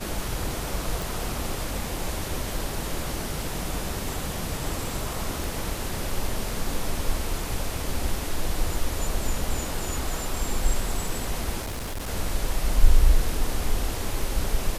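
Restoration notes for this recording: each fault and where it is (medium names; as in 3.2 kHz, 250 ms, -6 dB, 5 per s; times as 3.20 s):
1.02 s: pop
5.44 s: pop
11.62–12.09 s: clipped -28.5 dBFS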